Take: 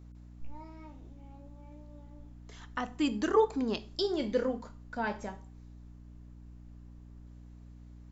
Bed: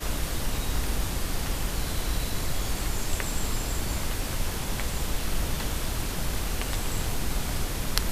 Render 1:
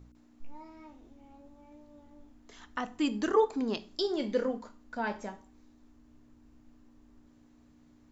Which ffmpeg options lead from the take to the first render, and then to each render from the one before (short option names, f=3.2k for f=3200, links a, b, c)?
-af "bandreject=f=60:t=h:w=4,bandreject=f=120:t=h:w=4,bandreject=f=180:t=h:w=4"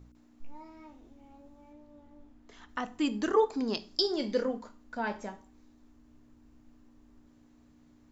-filter_complex "[0:a]asettb=1/sr,asplit=3[a][b][c];[a]atrim=end=1.724[d];[b]atrim=start=1.72:end=2.69,asetpts=PTS-STARTPTS,afade=t=in:d=0.004:c=qsin,afade=t=out:st=0.966:d=0.004:c=qsin,highshelf=f=5.5k:g=-9.5[e];[c]atrim=start=2.686[f];[d][e]acrossfade=d=0.004:c1=hsin:c2=qsin[g];[g][f]acrossfade=d=0.004:c1=qsin:c2=hsin,asettb=1/sr,asplit=3[h][i][j];[h]atrim=end=3.514[k];[i]atrim=start=3.51:end=4.43,asetpts=PTS-STARTPTS,afade=t=in:d=0.004:c=qsin,afade=t=out:st=0.916:d=0.004:c=qsin,equalizer=f=5k:w=3.2:g=9.5[l];[j]atrim=start=4.426[m];[k][l]acrossfade=d=0.004:c1=hsin:c2=qsin[n];[n][m]acrossfade=d=0.004:c1=qsin:c2=hsin"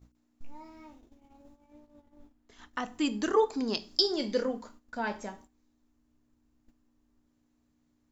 -af "agate=range=-12dB:threshold=-53dB:ratio=16:detection=peak,highshelf=f=4.1k:g=6"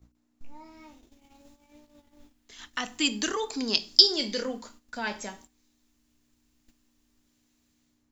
-filter_complex "[0:a]acrossover=split=200|2100[a][b][c];[b]alimiter=level_in=1.5dB:limit=-24dB:level=0:latency=1:release=38,volume=-1.5dB[d];[c]dynaudnorm=f=650:g=3:m=13.5dB[e];[a][d][e]amix=inputs=3:normalize=0"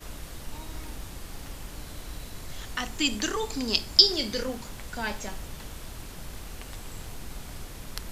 -filter_complex "[1:a]volume=-11dB[a];[0:a][a]amix=inputs=2:normalize=0"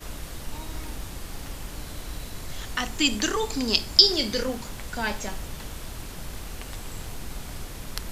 -af "volume=3.5dB,alimiter=limit=-1dB:level=0:latency=1"